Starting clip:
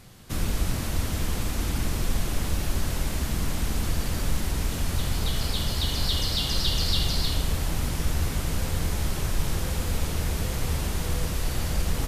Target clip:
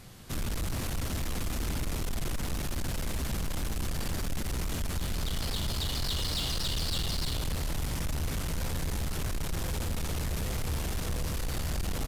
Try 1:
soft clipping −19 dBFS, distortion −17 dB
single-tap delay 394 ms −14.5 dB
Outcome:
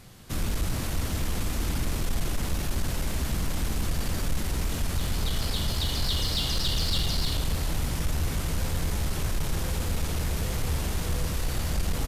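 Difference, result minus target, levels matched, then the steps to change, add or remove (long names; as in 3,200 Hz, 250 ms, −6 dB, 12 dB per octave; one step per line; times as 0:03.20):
soft clipping: distortion −9 dB
change: soft clipping −28 dBFS, distortion −9 dB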